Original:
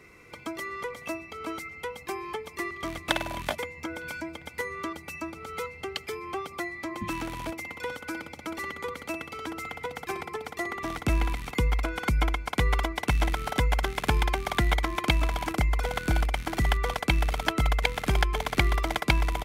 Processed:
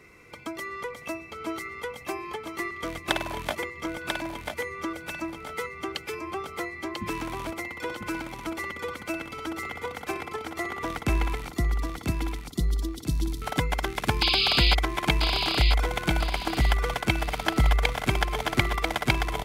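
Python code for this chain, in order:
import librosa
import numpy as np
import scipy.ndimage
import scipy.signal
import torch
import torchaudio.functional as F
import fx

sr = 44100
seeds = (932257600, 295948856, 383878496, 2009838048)

y = fx.ellip_bandstop(x, sr, low_hz=340.0, high_hz=4100.0, order=3, stop_db=40, at=(11.48, 13.42))
y = fx.spec_paint(y, sr, seeds[0], shape='noise', start_s=14.21, length_s=0.54, low_hz=2200.0, high_hz=5100.0, level_db=-24.0)
y = fx.echo_feedback(y, sr, ms=992, feedback_pct=30, wet_db=-5.0)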